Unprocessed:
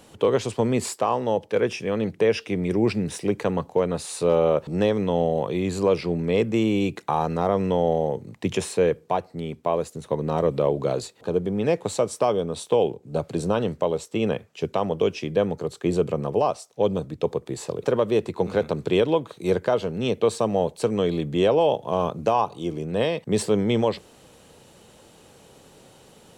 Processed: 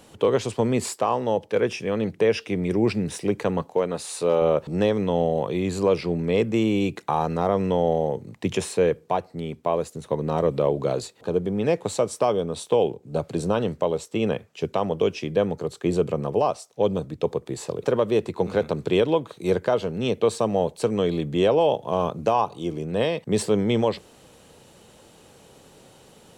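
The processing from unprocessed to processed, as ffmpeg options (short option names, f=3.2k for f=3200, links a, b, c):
-filter_complex "[0:a]asettb=1/sr,asplit=3[a][b][c];[a]atrim=end=3.624[d];[b]atrim=start=3.62:end=4.42,asetpts=PTS-STARTPTS,afade=t=in:d=0.004:c=qsin,afade=t=out:st=0.796:d=0.004:c=qsin,highpass=f=240:p=1[e];[c]atrim=start=4.416[f];[d][e]acrossfade=d=0.004:c1=hsin:c2=qsin[g];[g][f]acrossfade=d=0.004:c1=qsin:c2=hsin"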